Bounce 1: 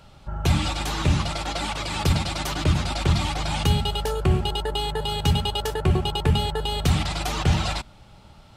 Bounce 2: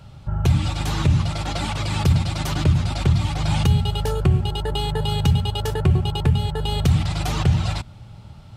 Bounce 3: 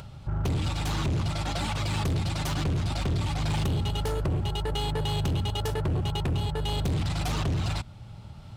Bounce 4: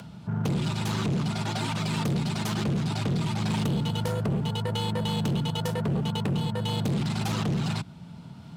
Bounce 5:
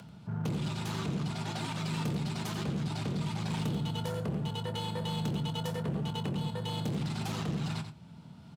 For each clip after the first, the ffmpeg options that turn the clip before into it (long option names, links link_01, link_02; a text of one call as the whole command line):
ffmpeg -i in.wav -af "equalizer=frequency=110:width_type=o:width=1.4:gain=13.5,alimiter=limit=-8dB:level=0:latency=1:release=412" out.wav
ffmpeg -i in.wav -af "acompressor=mode=upward:threshold=-35dB:ratio=2.5,asoftclip=type=hard:threshold=-20.5dB,volume=-3.5dB" out.wav
ffmpeg -i in.wav -af "afreqshift=57" out.wav
ffmpeg -i in.wav -filter_complex "[0:a]asplit=2[link_01][link_02];[link_02]adelay=26,volume=-12dB[link_03];[link_01][link_03]amix=inputs=2:normalize=0,aecho=1:1:88:0.335,volume=-7dB" out.wav